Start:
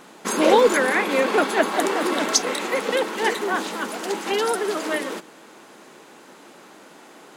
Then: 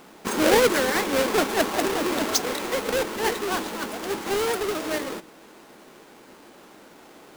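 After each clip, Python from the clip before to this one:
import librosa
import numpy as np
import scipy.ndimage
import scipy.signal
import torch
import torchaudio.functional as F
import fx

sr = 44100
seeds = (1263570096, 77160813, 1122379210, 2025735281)

y = fx.halfwave_hold(x, sr)
y = y * 10.0 ** (-7.0 / 20.0)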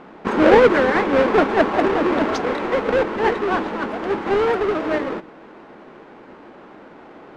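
y = scipy.signal.sosfilt(scipy.signal.butter(2, 1900.0, 'lowpass', fs=sr, output='sos'), x)
y = y * 10.0 ** (7.0 / 20.0)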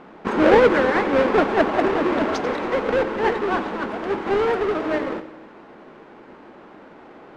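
y = fx.echo_feedback(x, sr, ms=91, feedback_pct=58, wet_db=-14.5)
y = y * 10.0 ** (-2.0 / 20.0)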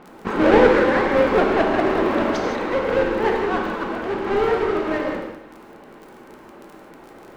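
y = fx.low_shelf(x, sr, hz=63.0, db=8.5)
y = fx.dmg_crackle(y, sr, seeds[0], per_s=23.0, level_db=-31.0)
y = fx.rev_gated(y, sr, seeds[1], gate_ms=200, shape='flat', drr_db=1.0)
y = y * 10.0 ** (-2.0 / 20.0)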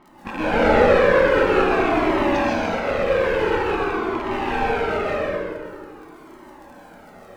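y = fx.rattle_buzz(x, sr, strikes_db=-29.0, level_db=-17.0)
y = fx.rev_plate(y, sr, seeds[2], rt60_s=1.9, hf_ratio=0.6, predelay_ms=115, drr_db=-5.5)
y = fx.comb_cascade(y, sr, direction='falling', hz=0.47)
y = y * 10.0 ** (-2.0 / 20.0)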